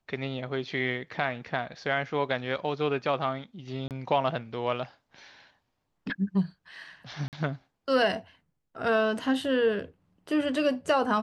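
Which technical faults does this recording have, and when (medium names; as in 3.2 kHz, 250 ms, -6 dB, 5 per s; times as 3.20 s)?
3.88–3.91 s: dropout 28 ms
7.28–7.33 s: dropout 48 ms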